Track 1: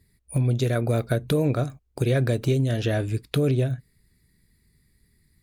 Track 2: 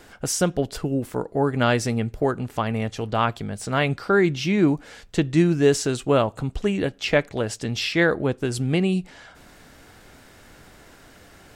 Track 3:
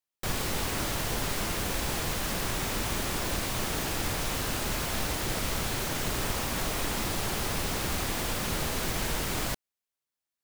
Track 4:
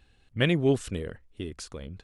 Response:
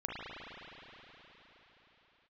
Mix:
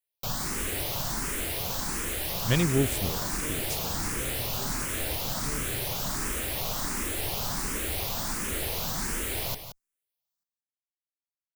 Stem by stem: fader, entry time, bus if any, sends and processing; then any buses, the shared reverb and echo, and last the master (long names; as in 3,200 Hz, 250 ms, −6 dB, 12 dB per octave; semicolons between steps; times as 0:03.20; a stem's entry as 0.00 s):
−19.5 dB, 2.10 s, no send, no echo send, no processing
muted
0.0 dB, 0.00 s, no send, echo send −10 dB, frequency shifter mixed with the dry sound +1.4 Hz
−4.5 dB, 2.10 s, no send, no echo send, bass and treble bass +6 dB, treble +7 dB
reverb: not used
echo: single-tap delay 173 ms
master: high-shelf EQ 7,600 Hz +7.5 dB